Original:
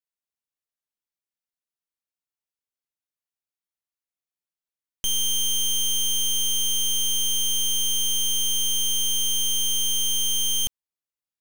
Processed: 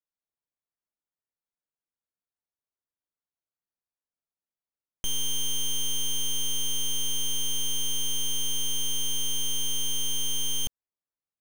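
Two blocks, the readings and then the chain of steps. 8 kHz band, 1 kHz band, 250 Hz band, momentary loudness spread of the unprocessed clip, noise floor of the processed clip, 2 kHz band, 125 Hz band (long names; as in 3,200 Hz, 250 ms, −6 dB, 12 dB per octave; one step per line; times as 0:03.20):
−6.0 dB, can't be measured, 0.0 dB, 1 LU, below −85 dBFS, −0.5 dB, 0.0 dB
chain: adaptive Wiener filter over 15 samples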